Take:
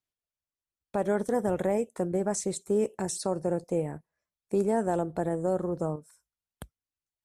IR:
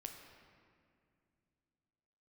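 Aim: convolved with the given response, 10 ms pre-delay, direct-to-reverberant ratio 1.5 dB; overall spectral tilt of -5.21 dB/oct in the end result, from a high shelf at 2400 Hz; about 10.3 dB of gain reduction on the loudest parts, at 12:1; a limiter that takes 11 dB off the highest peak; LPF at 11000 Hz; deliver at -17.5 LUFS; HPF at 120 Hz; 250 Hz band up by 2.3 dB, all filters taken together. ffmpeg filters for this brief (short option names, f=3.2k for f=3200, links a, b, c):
-filter_complex "[0:a]highpass=120,lowpass=11k,equalizer=f=250:t=o:g=4,highshelf=f=2.4k:g=3,acompressor=threshold=-30dB:ratio=12,alimiter=level_in=5.5dB:limit=-24dB:level=0:latency=1,volume=-5.5dB,asplit=2[a][b];[1:a]atrim=start_sample=2205,adelay=10[c];[b][c]afir=irnorm=-1:irlink=0,volume=2.5dB[d];[a][d]amix=inputs=2:normalize=0,volume=20.5dB"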